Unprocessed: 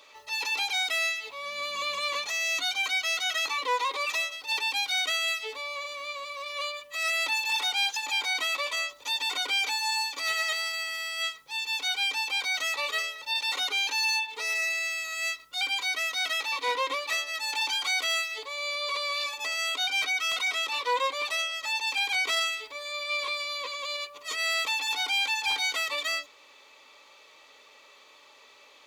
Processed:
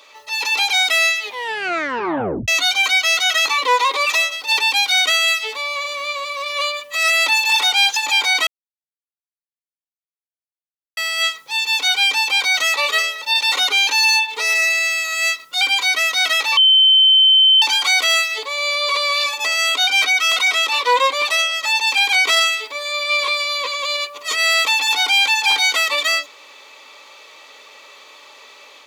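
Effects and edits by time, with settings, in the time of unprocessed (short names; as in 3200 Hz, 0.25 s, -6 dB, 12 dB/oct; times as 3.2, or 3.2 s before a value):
1.22 tape stop 1.26 s
5.25–5.88 bell 350 Hz -6 dB 1.1 oct
8.47–10.97 mute
16.57–17.62 bleep 3080 Hz -20 dBFS
whole clip: HPF 250 Hz 6 dB/oct; AGC gain up to 4.5 dB; gain +7.5 dB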